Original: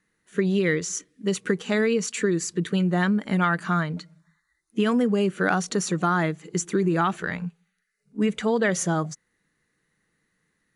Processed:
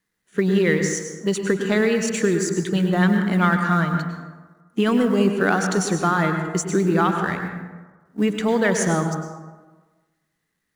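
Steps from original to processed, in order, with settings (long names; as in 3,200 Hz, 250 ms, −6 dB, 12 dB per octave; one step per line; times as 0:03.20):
mu-law and A-law mismatch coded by A
dense smooth reverb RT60 1.3 s, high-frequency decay 0.45×, pre-delay 90 ms, DRR 5 dB
level +3 dB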